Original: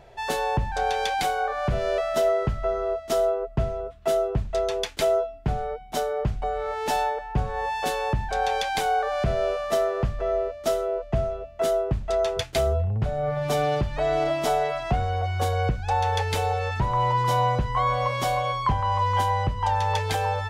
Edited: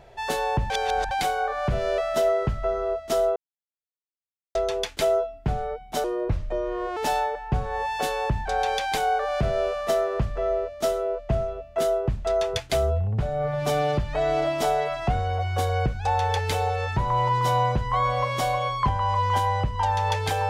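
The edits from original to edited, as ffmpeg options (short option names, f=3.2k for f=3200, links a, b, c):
-filter_complex "[0:a]asplit=7[a][b][c][d][e][f][g];[a]atrim=end=0.702[h];[b]atrim=start=0.698:end=1.112,asetpts=PTS-STARTPTS,areverse[i];[c]atrim=start=1.108:end=3.36,asetpts=PTS-STARTPTS,afade=t=out:st=2.248:d=0.004:c=hsin[j];[d]atrim=start=3.36:end=4.55,asetpts=PTS-STARTPTS,volume=0[k];[e]atrim=start=4.55:end=6.044,asetpts=PTS-STARTPTS,afade=t=in:d=0.004:c=hsin[l];[f]atrim=start=6.04:end=6.8,asetpts=PTS-STARTPTS,asetrate=36162,aresample=44100,atrim=end_sample=40873,asetpts=PTS-STARTPTS[m];[g]atrim=start=6.796[n];[h][i]acrossfade=d=0.004:c1=hsin:c2=hsin[o];[j][k][l]concat=n=3:v=0:a=1[p];[o][p]acrossfade=d=0.004:c1=hsin:c2=hsin[q];[q][m]acrossfade=d=0.004:c1=hsin:c2=hsin[r];[r][n]acrossfade=d=0.004:c1=hsin:c2=hsin"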